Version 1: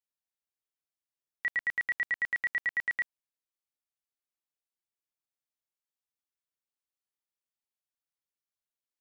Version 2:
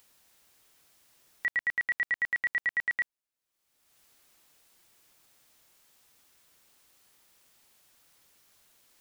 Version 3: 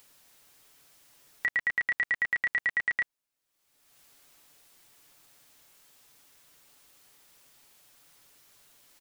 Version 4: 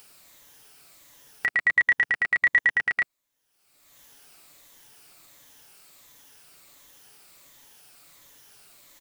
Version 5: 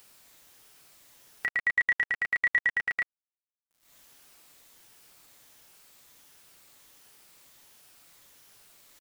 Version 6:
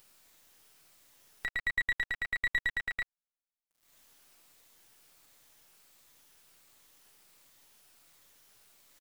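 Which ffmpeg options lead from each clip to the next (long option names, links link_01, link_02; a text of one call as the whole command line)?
ffmpeg -i in.wav -af "acompressor=mode=upward:threshold=-44dB:ratio=2.5,volume=1.5dB" out.wav
ffmpeg -i in.wav -af "aecho=1:1:7:0.35,volume=3.5dB" out.wav
ffmpeg -i in.wav -af "afftfilt=real='re*pow(10,6/40*sin(2*PI*(1.1*log(max(b,1)*sr/1024/100)/log(2)-(-1.4)*(pts-256)/sr)))':imag='im*pow(10,6/40*sin(2*PI*(1.1*log(max(b,1)*sr/1024/100)/log(2)-(-1.4)*(pts-256)/sr)))':win_size=1024:overlap=0.75,volume=6dB" out.wav
ffmpeg -i in.wav -af "acrusher=bits=8:mix=0:aa=0.000001,volume=-5dB" out.wav
ffmpeg -i in.wav -af "aeval=exprs='if(lt(val(0),0),0.447*val(0),val(0))':channel_layout=same,volume=-3dB" out.wav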